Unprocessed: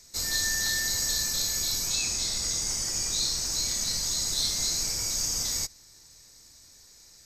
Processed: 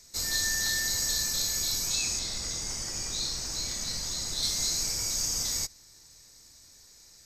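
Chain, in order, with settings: 2.19–4.43 high shelf 5400 Hz -7.5 dB; gain -1 dB

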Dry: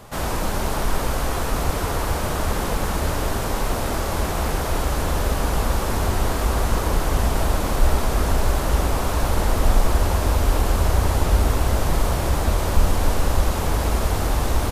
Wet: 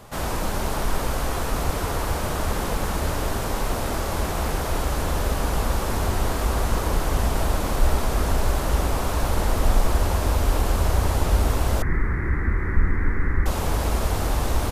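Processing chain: 11.82–13.46 EQ curve 380 Hz 0 dB, 630 Hz -20 dB, 2000 Hz +10 dB, 2900 Hz -29 dB; gain -2 dB

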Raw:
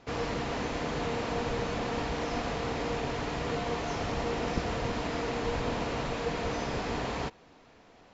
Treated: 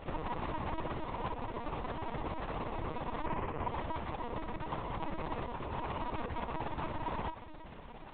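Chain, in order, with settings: 3.25–3.68 Chebyshev band-pass 100–2600 Hz, order 3; negative-ratio compressor -40 dBFS, ratio -1; bit-crush 11-bit; low shelf 140 Hz -7.5 dB; notch 580 Hz, Q 17; small resonant body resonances 310/960 Hz, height 10 dB, ringing for 30 ms; AM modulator 33 Hz, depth 80%; LPC vocoder at 8 kHz pitch kept; dynamic EQ 1000 Hz, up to +4 dB, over -52 dBFS, Q 1.2; gain +2.5 dB

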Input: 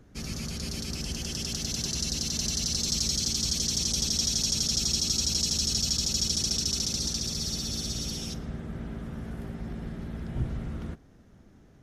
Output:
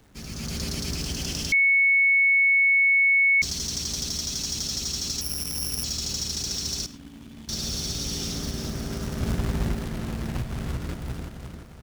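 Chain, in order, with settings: AGC gain up to 11 dB; feedback echo 0.347 s, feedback 46%, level -7 dB; compressor 10:1, threshold -22 dBFS, peak gain reduction 10.5 dB; 5.21–5.84 careless resampling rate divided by 8×, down filtered, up zero stuff; 6.86–7.49 vocal tract filter i; 9.2–9.75 low shelf 210 Hz +8 dB; companded quantiser 4-bit; reverb RT60 0.35 s, pre-delay 45 ms, DRR 17 dB; 1.52–3.42 bleep 2210 Hz -12 dBFS; Doppler distortion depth 0.22 ms; gain -4 dB

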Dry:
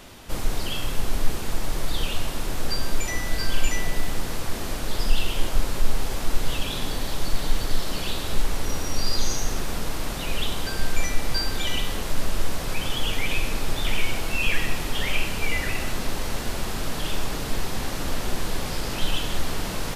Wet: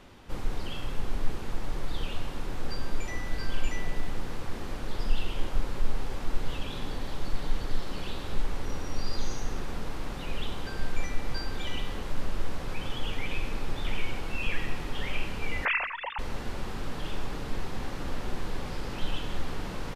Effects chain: 15.65–16.19 sine-wave speech; LPF 2200 Hz 6 dB/oct; notch 650 Hz, Q 12; feedback echo 0.24 s, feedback 37%, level -22.5 dB; gain -5.5 dB

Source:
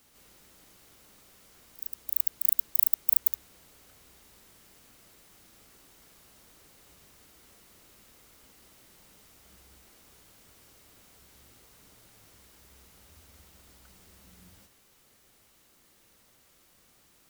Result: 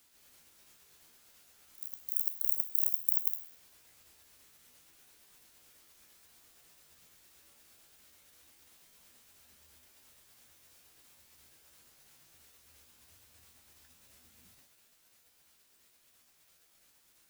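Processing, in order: repeated pitch sweeps +5.5 st, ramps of 0.17 s; tilt shelf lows -4.5 dB, about 1100 Hz; resonator 81 Hz, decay 0.58 s, harmonics all, mix 70%; gain +1.5 dB

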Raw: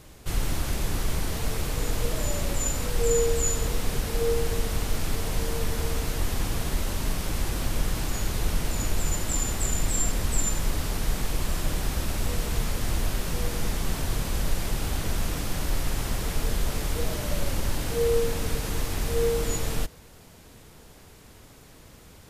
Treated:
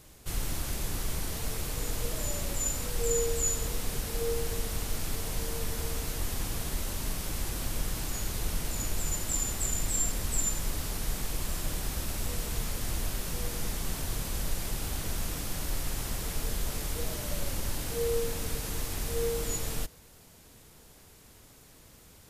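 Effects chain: high shelf 5100 Hz +7.5 dB; gain -6.5 dB

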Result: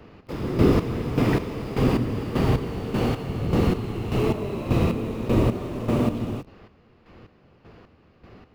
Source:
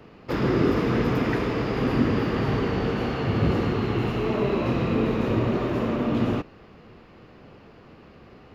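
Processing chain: octaver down 1 oct, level -2 dB; in parallel at -8 dB: bit-crush 6-bit; on the sum: dynamic EQ 1600 Hz, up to -6 dB, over -46 dBFS, Q 2; chopper 1.7 Hz, depth 65%, duty 35%

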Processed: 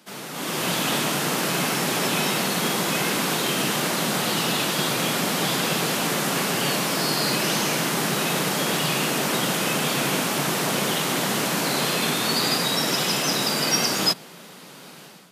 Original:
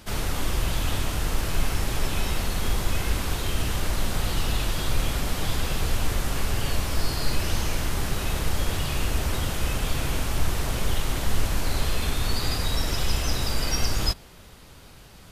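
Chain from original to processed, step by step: steep high-pass 150 Hz 48 dB/oct; AGC gain up to 13.5 dB; gain -5 dB

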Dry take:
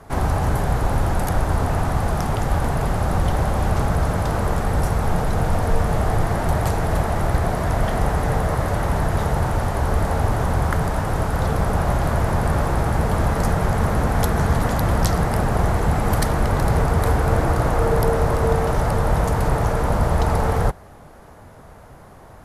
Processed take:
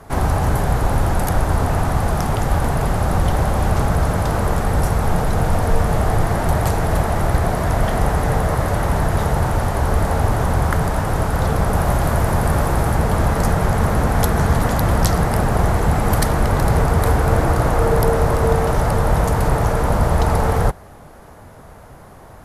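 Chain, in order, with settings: high shelf 11000 Hz +4.5 dB, from 11.73 s +11.5 dB, from 12.95 s +4.5 dB; gain +2.5 dB

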